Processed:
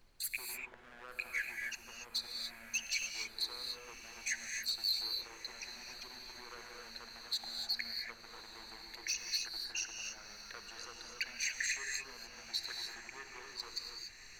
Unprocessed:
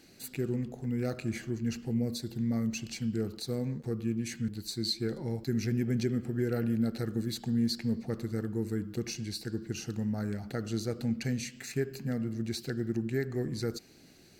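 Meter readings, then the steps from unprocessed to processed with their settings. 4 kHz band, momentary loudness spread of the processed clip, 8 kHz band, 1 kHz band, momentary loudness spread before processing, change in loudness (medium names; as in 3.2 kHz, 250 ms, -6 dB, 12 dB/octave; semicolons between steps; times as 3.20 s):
+3.5 dB, 13 LU, +3.0 dB, -2.5 dB, 6 LU, -6.0 dB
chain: resonances exaggerated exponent 2; gate -53 dBFS, range -25 dB; peak limiter -25.5 dBFS, peak gain reduction 6 dB; compression, threshold -33 dBFS, peak gain reduction 5 dB; overload inside the chain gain 34 dB; resonant high-pass 1.6 kHz, resonance Q 1.9; on a send: echo that smears into a reverb 1187 ms, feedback 68%, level -15.5 dB; on the sum: added noise brown -70 dBFS; gated-style reverb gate 310 ms rising, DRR 2.5 dB; tape noise reduction on one side only encoder only; trim +4 dB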